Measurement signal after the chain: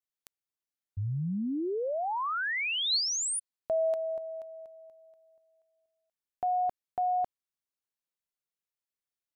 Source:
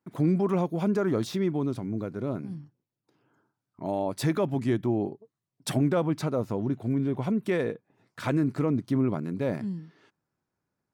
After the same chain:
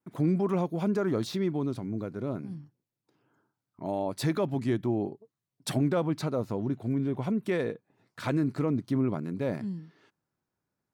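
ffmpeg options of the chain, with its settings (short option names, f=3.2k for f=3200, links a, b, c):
-af "adynamicequalizer=threshold=0.00158:dfrequency=4200:dqfactor=5.3:tfrequency=4200:tqfactor=5.3:attack=5:release=100:ratio=0.375:range=3:mode=boostabove:tftype=bell,volume=-2dB"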